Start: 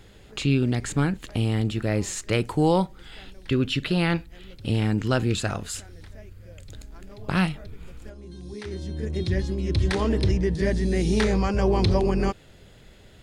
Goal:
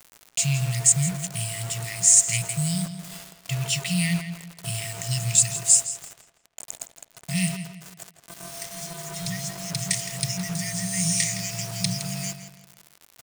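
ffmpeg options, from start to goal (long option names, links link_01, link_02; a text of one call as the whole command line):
ffmpeg -i in.wav -filter_complex "[0:a]afftfilt=real='re*(1-between(b*sr/4096,190,1800))':imag='im*(1-between(b*sr/4096,190,1800))':win_size=4096:overlap=0.75,aeval=exprs='val(0)+0.00891*sin(2*PI*680*n/s)':channel_layout=same,acrossover=split=260|1200|2400[link_01][link_02][link_03][link_04];[link_04]aexciter=amount=12.3:drive=2.9:freq=5600[link_05];[link_01][link_02][link_03][link_05]amix=inputs=4:normalize=0,afftfilt=real='re*between(b*sr/4096,110,9800)':imag='im*between(b*sr/4096,110,9800)':win_size=4096:overlap=0.75,acrusher=bits=5:mix=0:aa=0.000001,asplit=2[link_06][link_07];[link_07]adelay=165,lowpass=frequency=4800:poles=1,volume=-9.5dB,asplit=2[link_08][link_09];[link_09]adelay=165,lowpass=frequency=4800:poles=1,volume=0.37,asplit=2[link_10][link_11];[link_11]adelay=165,lowpass=frequency=4800:poles=1,volume=0.37,asplit=2[link_12][link_13];[link_13]adelay=165,lowpass=frequency=4800:poles=1,volume=0.37[link_14];[link_06][link_08][link_10][link_12][link_14]amix=inputs=5:normalize=0" out.wav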